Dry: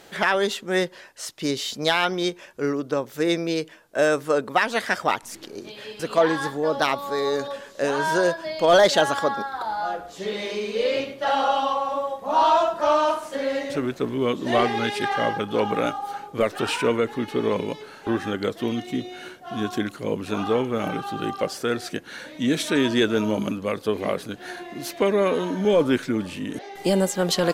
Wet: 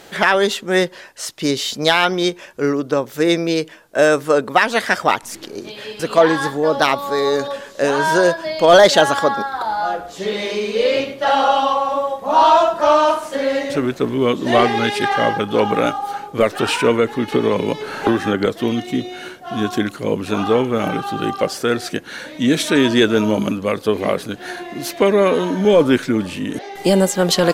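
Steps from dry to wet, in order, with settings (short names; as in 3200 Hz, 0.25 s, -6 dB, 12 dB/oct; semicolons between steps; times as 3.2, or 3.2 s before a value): 17.32–18.46 three-band squash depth 100%; gain +6.5 dB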